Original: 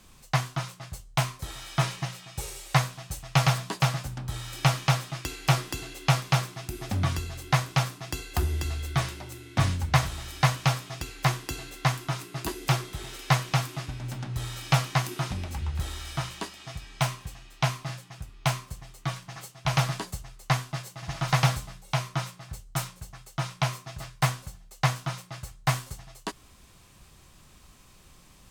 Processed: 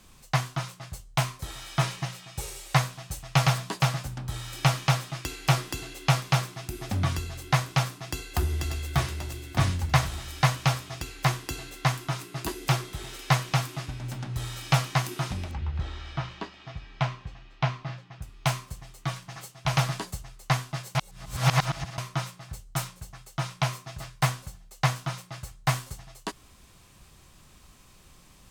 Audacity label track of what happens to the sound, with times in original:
7.900000	8.940000	echo throw 590 ms, feedback 45%, level -7 dB
15.510000	18.220000	distance through air 200 m
20.950000	21.980000	reverse

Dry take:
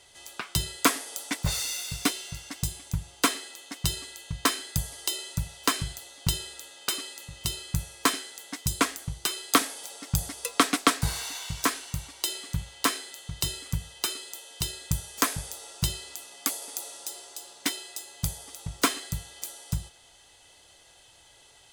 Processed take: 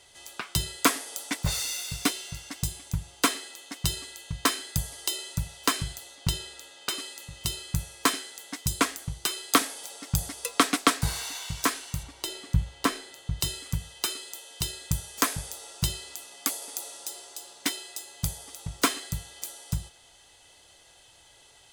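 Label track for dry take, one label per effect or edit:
6.150000	6.980000	treble shelf 8.1 kHz -7 dB
12.030000	13.400000	tilt EQ -2 dB/octave

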